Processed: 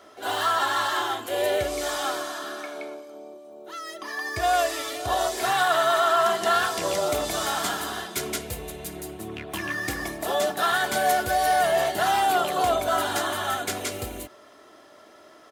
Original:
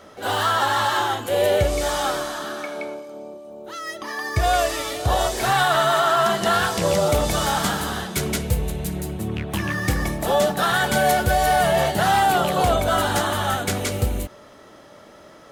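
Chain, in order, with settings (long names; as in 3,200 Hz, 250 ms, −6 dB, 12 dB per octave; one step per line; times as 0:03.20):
high-pass filter 330 Hz 6 dB per octave
comb filter 2.9 ms, depth 46%
level −4 dB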